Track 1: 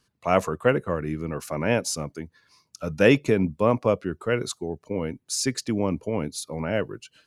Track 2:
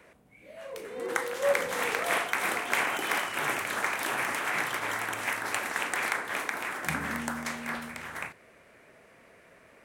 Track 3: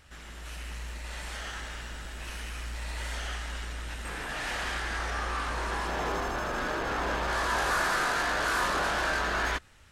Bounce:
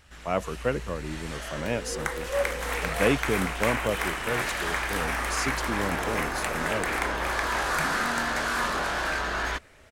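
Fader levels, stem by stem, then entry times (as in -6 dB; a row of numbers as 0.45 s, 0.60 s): -6.5 dB, -1.0 dB, 0.0 dB; 0.00 s, 0.90 s, 0.00 s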